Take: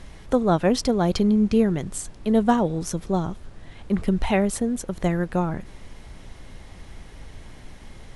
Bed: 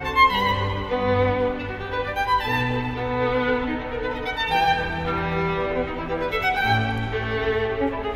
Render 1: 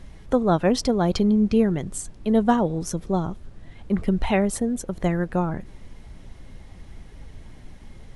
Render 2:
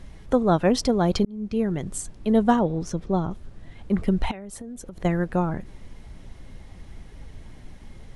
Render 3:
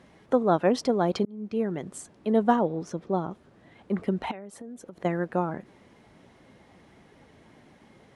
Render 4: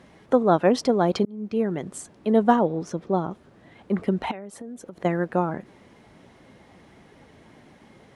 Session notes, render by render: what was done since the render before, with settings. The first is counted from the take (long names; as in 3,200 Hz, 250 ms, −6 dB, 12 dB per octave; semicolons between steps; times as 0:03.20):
broadband denoise 6 dB, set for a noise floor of −44 dBFS
0:01.25–0:01.89: fade in; 0:02.59–0:03.31: high-frequency loss of the air 84 metres; 0:04.31–0:05.05: downward compressor 10 to 1, threshold −34 dBFS
Bessel high-pass filter 280 Hz, order 2; high-shelf EQ 3,000 Hz −10 dB
level +3.5 dB